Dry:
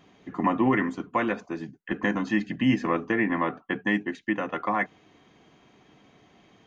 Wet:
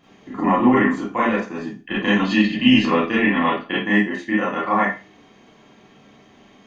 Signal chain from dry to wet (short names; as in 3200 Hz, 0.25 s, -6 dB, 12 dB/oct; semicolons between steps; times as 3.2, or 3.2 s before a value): 1.77–3.83 band shelf 3400 Hz +9.5 dB 1.1 oct; reverb RT60 0.30 s, pre-delay 28 ms, DRR -8 dB; gain -1 dB